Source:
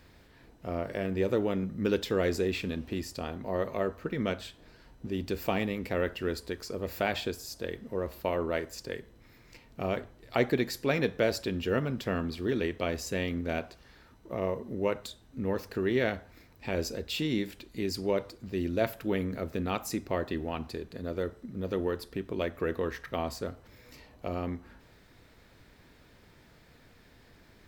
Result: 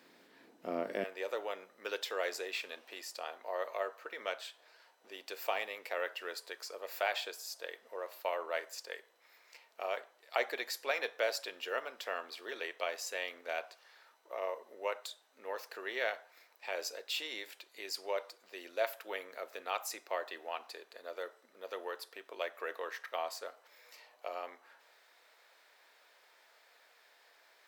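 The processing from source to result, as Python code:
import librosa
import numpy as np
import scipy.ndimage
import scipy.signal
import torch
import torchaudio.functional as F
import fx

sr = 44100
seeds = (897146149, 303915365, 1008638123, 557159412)

y = fx.highpass(x, sr, hz=fx.steps((0.0, 230.0), (1.04, 580.0)), slope=24)
y = y * librosa.db_to_amplitude(-2.0)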